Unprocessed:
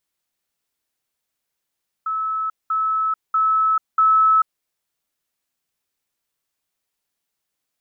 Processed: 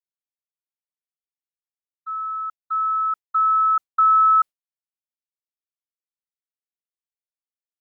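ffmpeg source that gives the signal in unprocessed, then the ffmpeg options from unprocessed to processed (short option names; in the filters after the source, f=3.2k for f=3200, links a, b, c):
-f lavfi -i "aevalsrc='pow(10,(-20.5+3*floor(t/0.64))/20)*sin(2*PI*1300*t)*clip(min(mod(t,0.64),0.44-mod(t,0.64))/0.005,0,1)':d=2.56:s=44100"
-af "agate=range=-33dB:threshold=-20dB:ratio=3:detection=peak"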